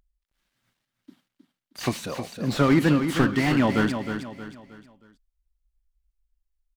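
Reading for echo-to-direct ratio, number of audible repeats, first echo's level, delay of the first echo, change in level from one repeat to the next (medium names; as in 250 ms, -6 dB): -7.5 dB, 4, -8.0 dB, 314 ms, -8.5 dB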